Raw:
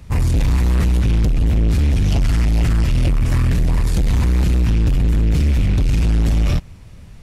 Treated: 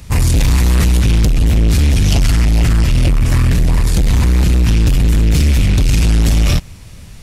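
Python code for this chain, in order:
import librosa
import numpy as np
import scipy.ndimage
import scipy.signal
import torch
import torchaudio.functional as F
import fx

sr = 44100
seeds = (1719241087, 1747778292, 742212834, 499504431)

y = fx.high_shelf(x, sr, hz=2800.0, db=fx.steps((0.0, 10.0), (2.3, 5.0), (4.66, 10.5)))
y = y * librosa.db_to_amplitude(4.0)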